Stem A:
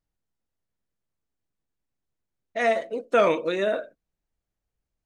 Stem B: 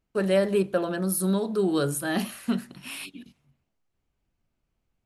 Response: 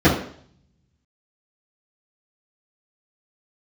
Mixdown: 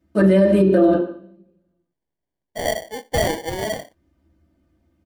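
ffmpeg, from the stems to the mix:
-filter_complex "[0:a]tiltshelf=f=1.4k:g=-3,acrusher=samples=34:mix=1:aa=0.000001,volume=1dB[a];[1:a]aecho=1:1:3.3:0.69,volume=0.5dB,asplit=3[b][c][d];[b]atrim=end=0.94,asetpts=PTS-STARTPTS,afade=t=out:st=0.936:d=0.004:c=hsin[e];[c]atrim=start=0.94:end=3.4,asetpts=PTS-STARTPTS,volume=0[f];[d]atrim=start=3.4,asetpts=PTS-STARTPTS,afade=t=in:d=0.004:c=hsin[g];[e][f][g]concat=n=3:v=0:a=1,asplit=2[h][i];[i]volume=-15.5dB[j];[2:a]atrim=start_sample=2205[k];[j][k]afir=irnorm=-1:irlink=0[l];[a][h][l]amix=inputs=3:normalize=0,alimiter=limit=-6.5dB:level=0:latency=1:release=99"

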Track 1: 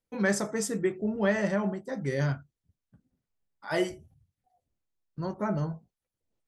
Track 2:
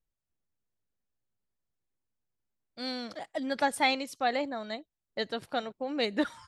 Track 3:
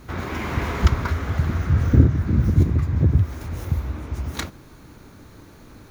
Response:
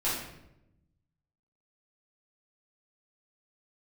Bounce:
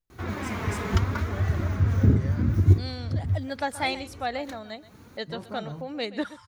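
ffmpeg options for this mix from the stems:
-filter_complex "[0:a]alimiter=limit=-23.5dB:level=0:latency=1:release=236,adelay=100,volume=-6.5dB[a];[1:a]volume=-1.5dB,asplit=3[b][c][d];[c]volume=-16.5dB[e];[2:a]highpass=73,flanger=delay=2.6:depth=2.2:regen=41:speed=0.74:shape=sinusoidal,adelay=100,volume=-0.5dB[f];[d]apad=whole_len=264809[g];[f][g]sidechaincompress=threshold=-52dB:ratio=3:attack=16:release=151[h];[e]aecho=0:1:127:1[i];[a][b][h][i]amix=inputs=4:normalize=0,equalizer=f=97:t=o:w=0.21:g=13.5"

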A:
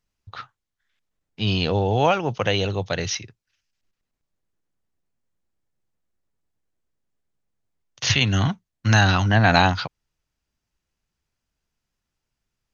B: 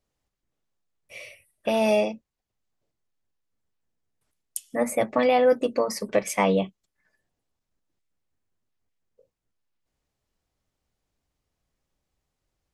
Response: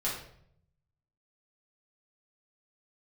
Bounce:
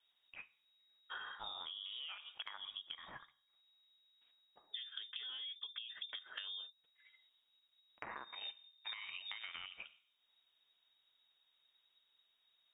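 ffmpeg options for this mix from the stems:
-filter_complex "[0:a]highpass=f=1.3k:p=1,afwtdn=0.0562,acompressor=threshold=-36dB:ratio=2.5,volume=3dB,asplit=3[a][b][c];[b]volume=-21dB[d];[1:a]acompressor=threshold=-29dB:ratio=3,volume=3dB[e];[c]apad=whole_len=561469[f];[e][f]sidechaincompress=threshold=-57dB:ratio=8:attack=30:release=304[g];[2:a]atrim=start_sample=2205[h];[d][h]afir=irnorm=-1:irlink=0[i];[a][g][i]amix=inputs=3:normalize=0,acrossover=split=140[j][k];[k]acompressor=threshold=-37dB:ratio=4[l];[j][l]amix=inputs=2:normalize=0,lowpass=f=3.2k:t=q:w=0.5098,lowpass=f=3.2k:t=q:w=0.6013,lowpass=f=3.2k:t=q:w=0.9,lowpass=f=3.2k:t=q:w=2.563,afreqshift=-3800,acompressor=threshold=-43dB:ratio=12"

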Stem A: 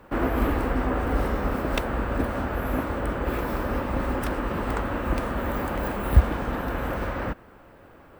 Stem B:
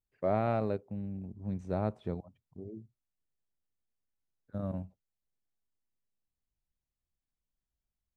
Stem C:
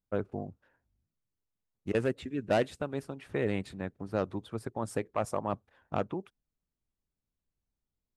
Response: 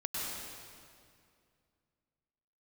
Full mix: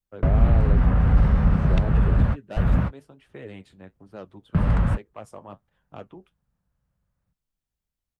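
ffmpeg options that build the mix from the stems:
-filter_complex "[0:a]lowpass=5.1k,lowshelf=f=220:t=q:w=3:g=11,asoftclip=type=tanh:threshold=-7dB,volume=-0.5dB[a];[1:a]adynamicequalizer=threshold=0.00631:dfrequency=380:dqfactor=1.7:tfrequency=380:tqfactor=1.7:attack=5:release=100:ratio=0.375:range=2:mode=boostabove:tftype=bell,volume=1.5dB,asplit=2[b][c];[2:a]equalizer=f=3.1k:w=5:g=6,flanger=delay=4.8:depth=7.7:regen=-56:speed=1.2:shape=triangular,volume=-5dB[d];[c]apad=whole_len=361582[e];[a][e]sidechaingate=range=-55dB:threshold=-50dB:ratio=16:detection=peak[f];[f][b][d]amix=inputs=3:normalize=0,acrossover=split=240[g][h];[h]acompressor=threshold=-29dB:ratio=3[i];[g][i]amix=inputs=2:normalize=0"

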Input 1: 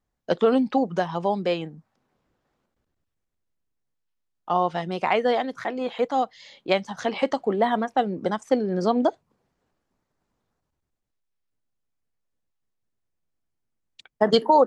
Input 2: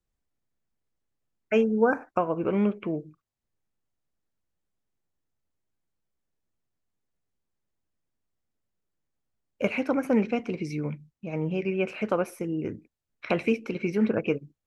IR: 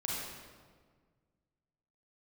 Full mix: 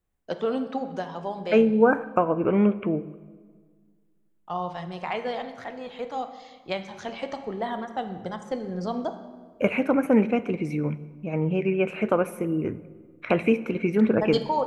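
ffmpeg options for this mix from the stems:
-filter_complex "[0:a]bandreject=f=68.32:t=h:w=4,bandreject=f=136.64:t=h:w=4,bandreject=f=204.96:t=h:w=4,bandreject=f=273.28:t=h:w=4,bandreject=f=341.6:t=h:w=4,bandreject=f=409.92:t=h:w=4,bandreject=f=478.24:t=h:w=4,bandreject=f=546.56:t=h:w=4,bandreject=f=614.88:t=h:w=4,bandreject=f=683.2:t=h:w=4,bandreject=f=751.52:t=h:w=4,bandreject=f=819.84:t=h:w=4,bandreject=f=888.16:t=h:w=4,bandreject=f=956.48:t=h:w=4,bandreject=f=1.0248k:t=h:w=4,bandreject=f=1.09312k:t=h:w=4,bandreject=f=1.16144k:t=h:w=4,bandreject=f=1.22976k:t=h:w=4,bandreject=f=1.29808k:t=h:w=4,bandreject=f=1.3664k:t=h:w=4,bandreject=f=1.43472k:t=h:w=4,bandreject=f=1.50304k:t=h:w=4,bandreject=f=1.57136k:t=h:w=4,bandreject=f=1.63968k:t=h:w=4,bandreject=f=1.708k:t=h:w=4,bandreject=f=1.77632k:t=h:w=4,bandreject=f=1.84464k:t=h:w=4,bandreject=f=1.91296k:t=h:w=4,bandreject=f=1.98128k:t=h:w=4,bandreject=f=2.0496k:t=h:w=4,bandreject=f=2.11792k:t=h:w=4,bandreject=f=2.18624k:t=h:w=4,bandreject=f=2.25456k:t=h:w=4,asubboost=boost=6:cutoff=110,volume=-8.5dB,asplit=2[a][b];[b]volume=-11dB[c];[1:a]equalizer=f=5k:w=1.7:g=-14,volume=3dB,asplit=2[d][e];[e]volume=-18dB[f];[2:a]atrim=start_sample=2205[g];[c][f]amix=inputs=2:normalize=0[h];[h][g]afir=irnorm=-1:irlink=0[i];[a][d][i]amix=inputs=3:normalize=0"

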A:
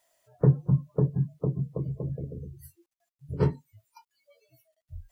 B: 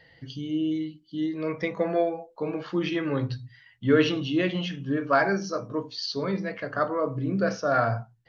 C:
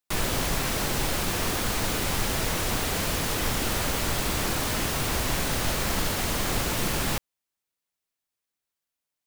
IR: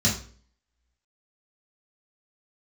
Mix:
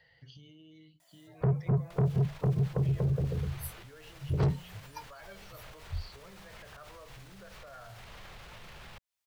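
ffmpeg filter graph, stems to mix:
-filter_complex "[0:a]dynaudnorm=f=480:g=3:m=7dB,adelay=1000,volume=3dB[a];[1:a]acompressor=threshold=-37dB:ratio=3,volume=-7.5dB,asplit=2[b][c];[2:a]acrossover=split=2400|6700[d][e][f];[d]acompressor=threshold=-40dB:ratio=4[g];[e]acompressor=threshold=-46dB:ratio=4[h];[f]acompressor=threshold=-48dB:ratio=4[i];[g][h][i]amix=inputs=3:normalize=0,adelay=1800,volume=1.5dB[j];[c]apad=whole_len=488081[k];[j][k]sidechaincompress=threshold=-53dB:ratio=8:attack=6.4:release=118[l];[b][l]amix=inputs=2:normalize=0,acrossover=split=3800[m][n];[n]acompressor=threshold=-56dB:ratio=4:attack=1:release=60[o];[m][o]amix=inputs=2:normalize=0,alimiter=level_in=15dB:limit=-24dB:level=0:latency=1:release=56,volume=-15dB,volume=0dB[p];[a][p]amix=inputs=2:normalize=0,equalizer=f=280:w=1.6:g=-14,acrossover=split=350|3000[q][r][s];[r]acompressor=threshold=-30dB:ratio=6[t];[q][t][s]amix=inputs=3:normalize=0,asoftclip=type=tanh:threshold=-22.5dB"

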